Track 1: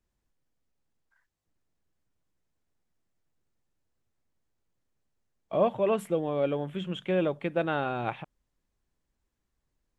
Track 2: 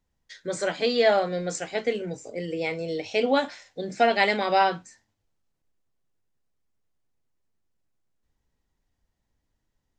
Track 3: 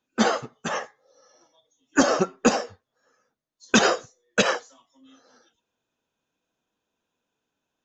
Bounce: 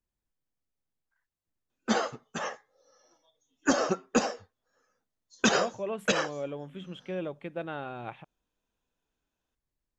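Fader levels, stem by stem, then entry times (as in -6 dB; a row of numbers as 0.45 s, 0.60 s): -8.0 dB, mute, -6.0 dB; 0.00 s, mute, 1.70 s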